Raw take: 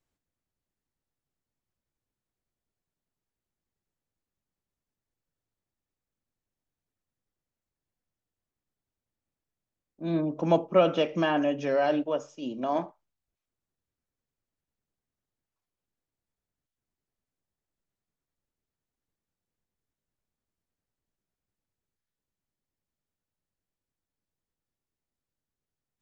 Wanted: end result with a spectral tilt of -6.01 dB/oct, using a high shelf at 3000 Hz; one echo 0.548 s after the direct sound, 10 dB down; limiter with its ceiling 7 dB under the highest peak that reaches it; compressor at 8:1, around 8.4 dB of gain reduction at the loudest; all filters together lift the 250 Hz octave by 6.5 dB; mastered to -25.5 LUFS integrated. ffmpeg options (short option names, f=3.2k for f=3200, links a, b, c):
-af "equalizer=f=250:t=o:g=9,highshelf=f=3k:g=4,acompressor=threshold=-22dB:ratio=8,alimiter=limit=-20dB:level=0:latency=1,aecho=1:1:548:0.316,volume=4dB"